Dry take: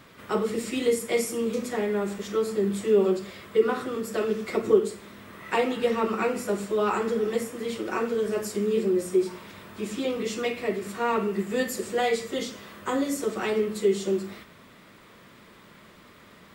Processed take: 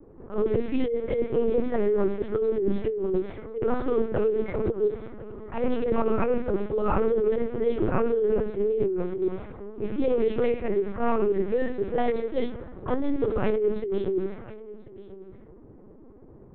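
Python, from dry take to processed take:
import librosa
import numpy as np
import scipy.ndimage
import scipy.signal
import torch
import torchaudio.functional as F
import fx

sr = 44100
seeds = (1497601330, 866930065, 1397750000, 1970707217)

p1 = fx.env_lowpass(x, sr, base_hz=420.0, full_db=-23.5)
p2 = scipy.signal.sosfilt(scipy.signal.butter(4, 250.0, 'highpass', fs=sr, output='sos'), p1)
p3 = fx.tilt_eq(p2, sr, slope=-4.5)
p4 = fx.over_compress(p3, sr, threshold_db=-23.0, ratio=-1.0)
p5 = p4 + fx.echo_single(p4, sr, ms=1043, db=-18.0, dry=0)
p6 = fx.lpc_vocoder(p5, sr, seeds[0], excitation='pitch_kept', order=8)
y = fx.attack_slew(p6, sr, db_per_s=190.0)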